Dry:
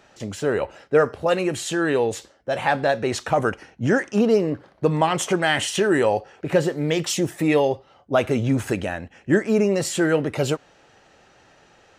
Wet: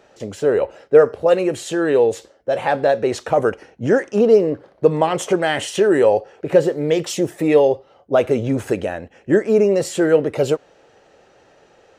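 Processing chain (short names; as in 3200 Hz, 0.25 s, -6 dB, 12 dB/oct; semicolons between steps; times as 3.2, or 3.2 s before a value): bell 480 Hz +9.5 dB 1.1 oct; gain -2 dB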